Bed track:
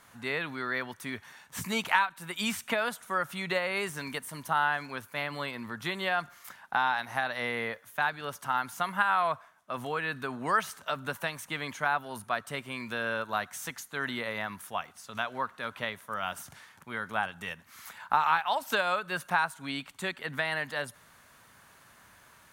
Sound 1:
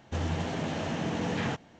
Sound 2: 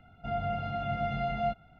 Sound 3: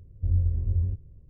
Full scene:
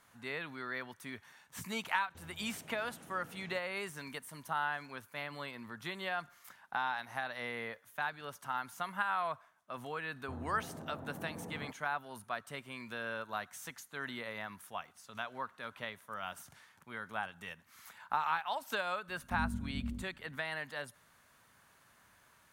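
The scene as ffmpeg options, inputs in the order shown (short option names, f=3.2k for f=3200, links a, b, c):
-filter_complex "[1:a]asplit=2[a][b];[0:a]volume=-8dB[c];[a]acompressor=threshold=-34dB:ratio=6:attack=3.2:release=140:knee=1:detection=peak[d];[b]lowpass=f=1.3k:w=0.5412,lowpass=f=1.3k:w=1.3066[e];[3:a]aeval=exprs='val(0)*sin(2*PI*150*n/s)':c=same[f];[d]atrim=end=1.79,asetpts=PTS-STARTPTS,volume=-17.5dB,afade=t=in:d=0.004:c=hsin,afade=t=out:st=1.786:d=0.004:c=hsin,adelay=2030[g];[e]atrim=end=1.79,asetpts=PTS-STARTPTS,volume=-14.5dB,afade=t=in:d=0.004:c=hsin,afade=t=out:st=1.786:d=0.004:c=hsin,adelay=10160[h];[f]atrim=end=1.29,asetpts=PTS-STARTPTS,volume=-11.5dB,afade=t=in:d=0.004:c=hsin,afade=t=out:st=1.286:d=0.004:c=hsin,adelay=841428S[i];[c][g][h][i]amix=inputs=4:normalize=0"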